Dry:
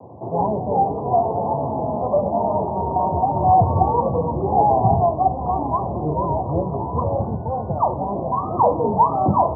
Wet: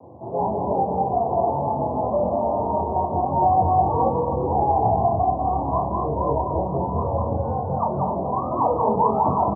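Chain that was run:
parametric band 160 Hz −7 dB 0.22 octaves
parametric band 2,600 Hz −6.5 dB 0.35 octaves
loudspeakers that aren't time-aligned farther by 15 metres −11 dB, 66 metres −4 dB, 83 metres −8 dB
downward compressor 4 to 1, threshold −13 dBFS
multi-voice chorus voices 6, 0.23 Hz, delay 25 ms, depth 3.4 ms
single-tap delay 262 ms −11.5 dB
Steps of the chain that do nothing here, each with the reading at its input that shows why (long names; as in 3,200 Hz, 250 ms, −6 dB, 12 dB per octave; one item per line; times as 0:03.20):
parametric band 2,600 Hz: nothing at its input above 1,200 Hz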